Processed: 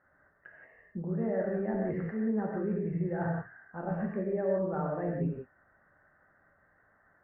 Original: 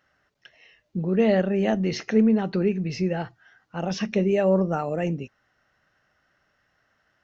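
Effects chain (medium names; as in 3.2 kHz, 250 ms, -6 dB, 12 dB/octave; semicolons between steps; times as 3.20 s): elliptic low-pass 1.8 kHz, stop band 50 dB; reverse; compression 6:1, threshold -33 dBFS, peak gain reduction 17 dB; reverse; gated-style reverb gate 200 ms flat, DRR -1.5 dB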